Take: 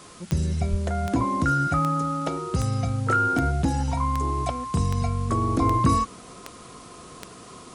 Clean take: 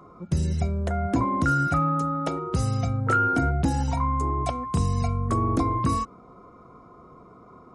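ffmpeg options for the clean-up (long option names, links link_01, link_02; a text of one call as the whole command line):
ffmpeg -i in.wav -filter_complex "[0:a]adeclick=threshold=4,asplit=3[link_01][link_02][link_03];[link_01]afade=type=out:start_time=0.7:duration=0.02[link_04];[link_02]highpass=frequency=140:width=0.5412,highpass=frequency=140:width=1.3066,afade=type=in:start_time=0.7:duration=0.02,afade=type=out:start_time=0.82:duration=0.02[link_05];[link_03]afade=type=in:start_time=0.82:duration=0.02[link_06];[link_04][link_05][link_06]amix=inputs=3:normalize=0,afwtdn=0.0045,asetnsamples=nb_out_samples=441:pad=0,asendcmd='5.62 volume volume -4dB',volume=0dB" out.wav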